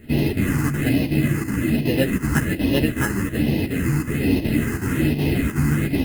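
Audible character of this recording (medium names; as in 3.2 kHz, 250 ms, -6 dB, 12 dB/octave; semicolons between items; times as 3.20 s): aliases and images of a low sample rate 2.3 kHz, jitter 0%; phasing stages 4, 1.2 Hz, lowest notch 600–1300 Hz; chopped level 2.7 Hz, depth 65%, duty 85%; a shimmering, thickened sound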